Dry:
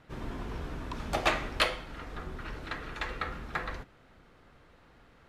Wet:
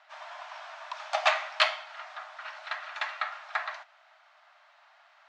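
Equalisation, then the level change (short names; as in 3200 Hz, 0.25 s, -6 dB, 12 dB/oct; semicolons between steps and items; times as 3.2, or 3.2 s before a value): brick-wall FIR high-pass 580 Hz; LPF 6500 Hz 24 dB/oct; +3.5 dB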